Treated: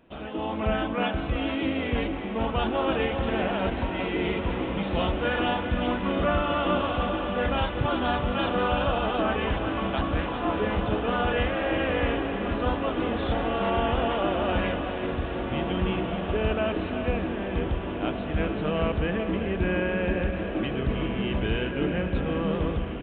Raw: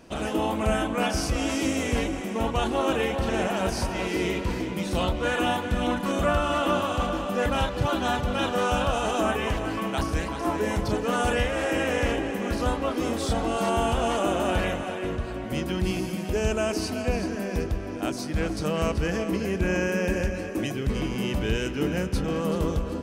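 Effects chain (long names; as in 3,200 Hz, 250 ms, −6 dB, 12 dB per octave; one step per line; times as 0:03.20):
automatic gain control gain up to 7 dB
on a send: feedback delay with all-pass diffusion 1,997 ms, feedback 61%, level −8.5 dB
on the sum: downsampling to 8,000 Hz
level −8 dB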